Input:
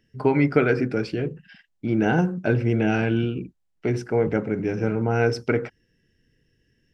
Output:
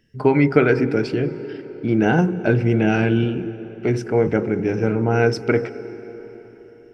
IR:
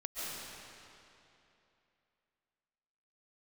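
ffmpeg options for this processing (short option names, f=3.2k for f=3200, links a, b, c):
-filter_complex "[0:a]asplit=2[a][b];[b]equalizer=f=370:w=2.4:g=12[c];[1:a]atrim=start_sample=2205,asetrate=30870,aresample=44100[d];[c][d]afir=irnorm=-1:irlink=0,volume=-22dB[e];[a][e]amix=inputs=2:normalize=0,volume=3dB"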